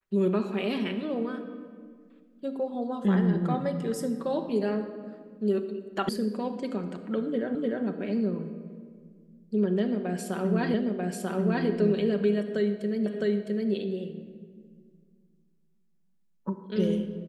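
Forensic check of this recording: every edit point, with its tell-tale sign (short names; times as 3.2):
6.09 sound cut off
7.55 repeat of the last 0.3 s
10.74 repeat of the last 0.94 s
13.06 repeat of the last 0.66 s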